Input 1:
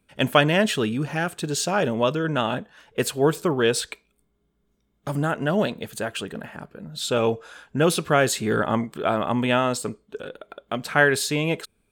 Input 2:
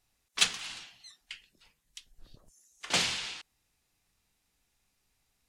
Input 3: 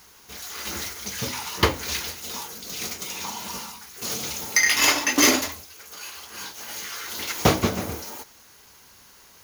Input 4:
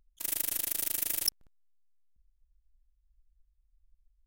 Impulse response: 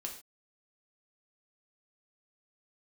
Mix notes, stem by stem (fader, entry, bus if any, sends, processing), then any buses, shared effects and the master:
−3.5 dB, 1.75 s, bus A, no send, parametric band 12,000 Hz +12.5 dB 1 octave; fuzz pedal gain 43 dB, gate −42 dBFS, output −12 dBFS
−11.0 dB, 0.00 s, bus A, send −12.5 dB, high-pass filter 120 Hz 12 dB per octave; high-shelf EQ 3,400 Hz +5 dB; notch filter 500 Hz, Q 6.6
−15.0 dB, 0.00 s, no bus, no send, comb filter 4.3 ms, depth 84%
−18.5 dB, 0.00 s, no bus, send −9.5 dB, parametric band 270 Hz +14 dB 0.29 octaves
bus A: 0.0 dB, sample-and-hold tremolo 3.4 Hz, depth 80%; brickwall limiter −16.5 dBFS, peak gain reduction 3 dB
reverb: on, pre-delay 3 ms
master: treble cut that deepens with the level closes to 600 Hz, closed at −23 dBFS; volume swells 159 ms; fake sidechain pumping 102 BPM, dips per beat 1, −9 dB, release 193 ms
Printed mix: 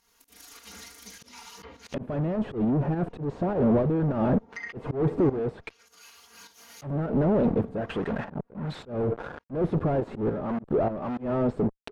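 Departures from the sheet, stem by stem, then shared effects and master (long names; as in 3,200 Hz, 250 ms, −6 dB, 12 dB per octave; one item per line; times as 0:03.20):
stem 2: muted
reverb: off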